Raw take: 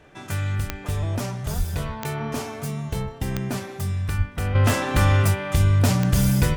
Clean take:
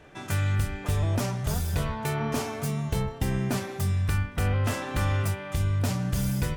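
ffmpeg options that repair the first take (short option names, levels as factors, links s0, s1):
-filter_complex "[0:a]adeclick=t=4,asplit=3[s0][s1][s2];[s0]afade=t=out:st=1.57:d=0.02[s3];[s1]highpass=f=140:w=0.5412,highpass=f=140:w=1.3066,afade=t=in:st=1.57:d=0.02,afade=t=out:st=1.69:d=0.02[s4];[s2]afade=t=in:st=1.69:d=0.02[s5];[s3][s4][s5]amix=inputs=3:normalize=0,asplit=3[s6][s7][s8];[s6]afade=t=out:st=4.17:d=0.02[s9];[s7]highpass=f=140:w=0.5412,highpass=f=140:w=1.3066,afade=t=in:st=4.17:d=0.02,afade=t=out:st=4.29:d=0.02[s10];[s8]afade=t=in:st=4.29:d=0.02[s11];[s9][s10][s11]amix=inputs=3:normalize=0,asetnsamples=n=441:p=0,asendcmd='4.55 volume volume -8dB',volume=1"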